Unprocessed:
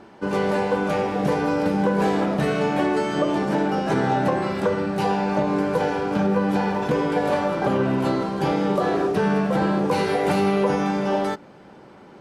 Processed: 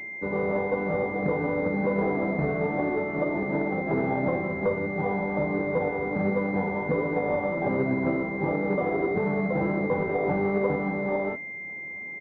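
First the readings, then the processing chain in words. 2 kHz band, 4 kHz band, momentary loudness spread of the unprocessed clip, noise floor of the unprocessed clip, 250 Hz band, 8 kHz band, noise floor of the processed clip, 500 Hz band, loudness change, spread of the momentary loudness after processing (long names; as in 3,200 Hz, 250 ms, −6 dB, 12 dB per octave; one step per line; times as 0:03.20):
−1.0 dB, below −20 dB, 3 LU, −46 dBFS, −5.5 dB, below −30 dB, −37 dBFS, −4.0 dB, −5.0 dB, 2 LU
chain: flanger 1.4 Hz, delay 6.3 ms, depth 8.8 ms, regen +74%
double-tracking delay 12 ms −10.5 dB
switching amplifier with a slow clock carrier 2,100 Hz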